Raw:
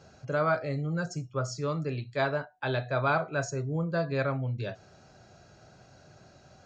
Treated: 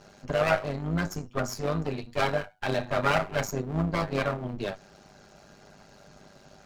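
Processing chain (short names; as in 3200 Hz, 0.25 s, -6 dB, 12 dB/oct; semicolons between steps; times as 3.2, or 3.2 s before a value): minimum comb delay 5 ms; AM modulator 100 Hz, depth 50%; gain +7 dB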